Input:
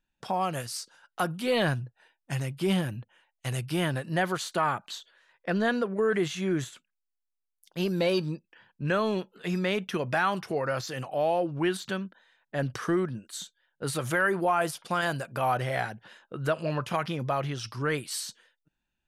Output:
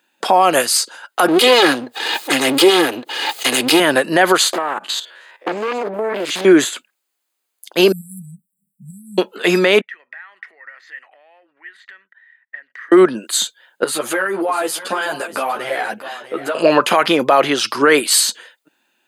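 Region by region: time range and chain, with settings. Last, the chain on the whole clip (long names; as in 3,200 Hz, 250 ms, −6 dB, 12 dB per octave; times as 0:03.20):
0:01.28–0:03.80: lower of the sound and its delayed copy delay 2.4 ms + parametric band 4,000 Hz +6.5 dB 0.84 octaves + background raised ahead of every attack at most 41 dB per second
0:04.53–0:06.45: spectrum averaged block by block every 50 ms + downward compressor 12 to 1, threshold −37 dBFS + highs frequency-modulated by the lows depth 0.93 ms
0:07.92–0:09.18: phaser with its sweep stopped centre 530 Hz, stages 8 + downward compressor 3 to 1, threshold −33 dBFS + linear-phase brick-wall band-stop 200–7,500 Hz
0:09.81–0:12.92: downward compressor 16 to 1, threshold −35 dBFS + resonant band-pass 1,900 Hz, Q 18
0:13.84–0:16.55: downward compressor 8 to 1, threshold −34 dBFS + single-tap delay 643 ms −13.5 dB + string-ensemble chorus
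whole clip: high-pass filter 280 Hz 24 dB per octave; notch filter 5,600 Hz, Q 7.2; boost into a limiter +22.5 dB; level −1 dB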